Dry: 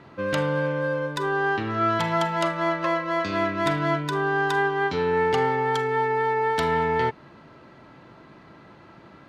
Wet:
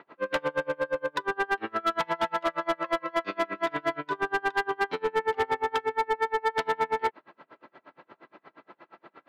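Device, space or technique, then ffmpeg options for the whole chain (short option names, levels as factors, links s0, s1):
helicopter radio: -af "highpass=390,lowpass=2900,aeval=exprs='val(0)*pow(10,-33*(0.5-0.5*cos(2*PI*8.5*n/s))/20)':c=same,asoftclip=type=hard:threshold=0.0562,volume=1.68"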